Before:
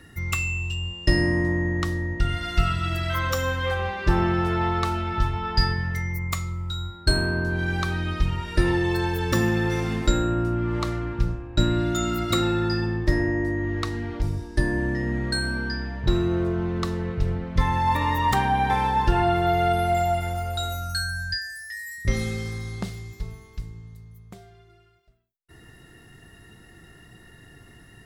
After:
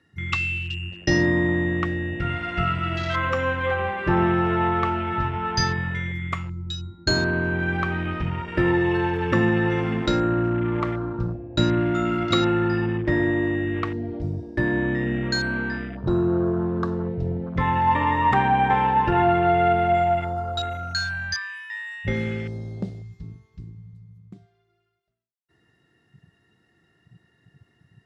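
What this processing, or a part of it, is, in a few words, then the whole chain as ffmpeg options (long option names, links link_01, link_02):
over-cleaned archive recording: -af "highpass=110,lowpass=6100,afwtdn=0.0178,volume=3dB"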